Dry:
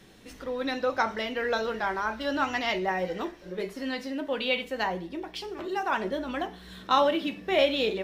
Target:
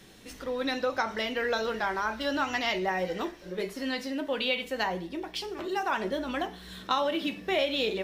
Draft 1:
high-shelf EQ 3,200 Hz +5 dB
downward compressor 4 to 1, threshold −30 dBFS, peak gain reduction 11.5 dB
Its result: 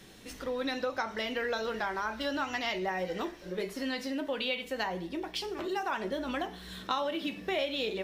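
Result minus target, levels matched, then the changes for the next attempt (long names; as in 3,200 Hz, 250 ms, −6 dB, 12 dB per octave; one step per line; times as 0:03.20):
downward compressor: peak gain reduction +4.5 dB
change: downward compressor 4 to 1, threshold −24 dBFS, peak gain reduction 7 dB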